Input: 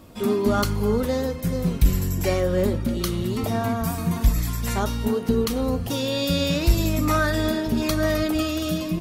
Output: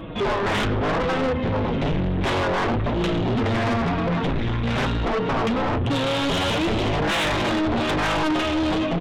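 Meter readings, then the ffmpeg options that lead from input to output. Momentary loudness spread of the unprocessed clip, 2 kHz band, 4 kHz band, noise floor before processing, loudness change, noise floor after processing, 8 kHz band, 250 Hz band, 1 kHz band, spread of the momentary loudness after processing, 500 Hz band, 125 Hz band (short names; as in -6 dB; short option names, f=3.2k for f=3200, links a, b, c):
4 LU, +5.5 dB, +3.0 dB, -31 dBFS, +1.0 dB, -24 dBFS, -6.0 dB, 0.0 dB, +6.0 dB, 2 LU, +0.5 dB, -0.5 dB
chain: -af "aresample=8000,aeval=exprs='0.398*sin(PI/2*5.62*val(0)/0.398)':c=same,aresample=44100,flanger=delay=6:depth=3.3:regen=-18:speed=0.98:shape=sinusoidal,asoftclip=type=tanh:threshold=-17.5dB,volume=-2dB"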